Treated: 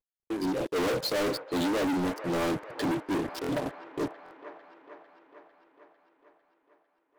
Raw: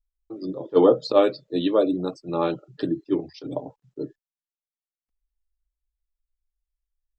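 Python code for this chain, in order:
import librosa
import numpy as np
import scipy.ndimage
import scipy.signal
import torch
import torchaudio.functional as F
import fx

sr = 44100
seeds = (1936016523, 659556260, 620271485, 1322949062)

p1 = fx.cvsd(x, sr, bps=64000)
p2 = fx.dynamic_eq(p1, sr, hz=280.0, q=4.1, threshold_db=-34.0, ratio=4.0, max_db=4)
p3 = fx.leveller(p2, sr, passes=5)
p4 = 10.0 ** (-18.0 / 20.0) * np.tanh(p3 / 10.0 ** (-18.0 / 20.0))
p5 = p4 + fx.echo_wet_bandpass(p4, sr, ms=450, feedback_pct=63, hz=1100.0, wet_db=-9.0, dry=0)
p6 = fx.buffer_glitch(p5, sr, at_s=(3.42, 4.24), block=1024, repeats=2)
y = p6 * 10.0 ** (-8.5 / 20.0)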